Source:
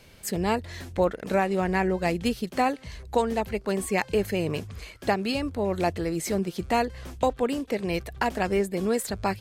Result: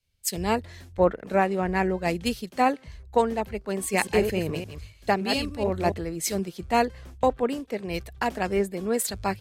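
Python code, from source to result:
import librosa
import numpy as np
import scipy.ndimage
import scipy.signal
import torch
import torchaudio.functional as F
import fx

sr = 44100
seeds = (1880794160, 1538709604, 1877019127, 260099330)

y = fx.reverse_delay(x, sr, ms=142, wet_db=-5, at=(3.79, 5.94))
y = fx.band_widen(y, sr, depth_pct=100)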